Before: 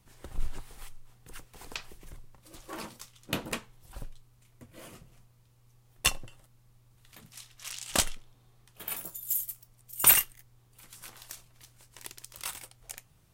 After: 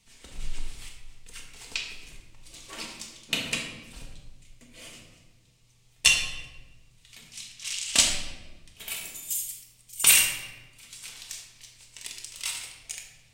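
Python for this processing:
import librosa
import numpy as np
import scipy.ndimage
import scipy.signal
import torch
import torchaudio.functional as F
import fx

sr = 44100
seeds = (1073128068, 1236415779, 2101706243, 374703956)

y = fx.band_shelf(x, sr, hz=4300.0, db=12.5, octaves=2.4)
y = fx.room_shoebox(y, sr, seeds[0], volume_m3=730.0, walls='mixed', distance_m=1.6)
y = y * librosa.db_to_amplitude(-6.0)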